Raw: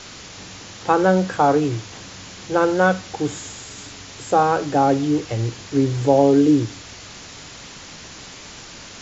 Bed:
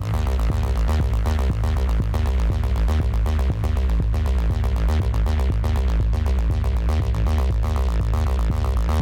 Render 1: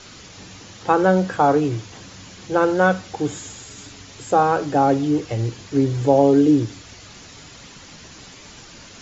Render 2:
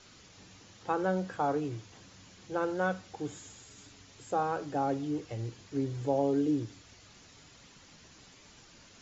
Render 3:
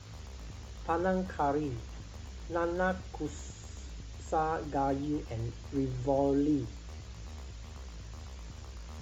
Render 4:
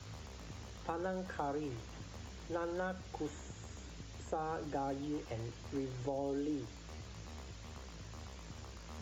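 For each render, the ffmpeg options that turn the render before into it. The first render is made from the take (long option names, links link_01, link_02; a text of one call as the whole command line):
ffmpeg -i in.wav -af "afftdn=noise_reduction=6:noise_floor=-39" out.wav
ffmpeg -i in.wav -af "volume=-14dB" out.wav
ffmpeg -i in.wav -i bed.wav -filter_complex "[1:a]volume=-25dB[link_01];[0:a][link_01]amix=inputs=2:normalize=0" out.wav
ffmpeg -i in.wav -filter_complex "[0:a]alimiter=limit=-22dB:level=0:latency=1:release=308,acrossover=split=90|420|2700[link_01][link_02][link_03][link_04];[link_01]acompressor=threshold=-58dB:ratio=4[link_05];[link_02]acompressor=threshold=-43dB:ratio=4[link_06];[link_03]acompressor=threshold=-38dB:ratio=4[link_07];[link_04]acompressor=threshold=-57dB:ratio=4[link_08];[link_05][link_06][link_07][link_08]amix=inputs=4:normalize=0" out.wav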